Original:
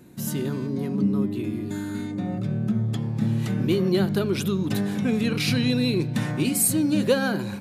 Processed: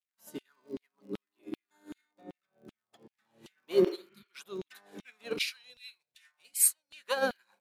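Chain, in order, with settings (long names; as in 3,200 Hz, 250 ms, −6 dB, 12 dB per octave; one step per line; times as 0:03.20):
surface crackle 77 per second −34 dBFS
auto-filter high-pass saw down 2.6 Hz 310–3,200 Hz
0:03.88–0:04.26: healed spectral selection 270–3,200 Hz both
0:05.42–0:06.93: guitar amp tone stack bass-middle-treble 10-0-10
expander for the loud parts 2.5 to 1, over −47 dBFS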